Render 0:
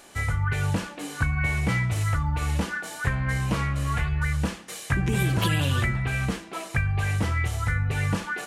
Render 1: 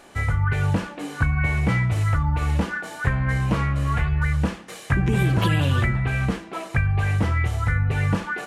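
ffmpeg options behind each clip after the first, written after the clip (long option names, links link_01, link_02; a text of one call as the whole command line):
ffmpeg -i in.wav -af "highshelf=frequency=3400:gain=-10.5,volume=4dB" out.wav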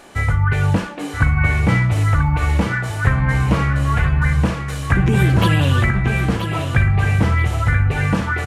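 ffmpeg -i in.wav -af "aecho=1:1:980|1960|2940|3920:0.398|0.127|0.0408|0.013,volume=5dB" out.wav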